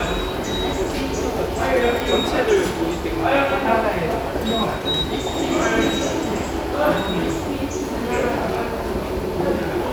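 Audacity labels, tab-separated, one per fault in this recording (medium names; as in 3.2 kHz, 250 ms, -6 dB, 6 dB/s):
2.000000	2.000000	pop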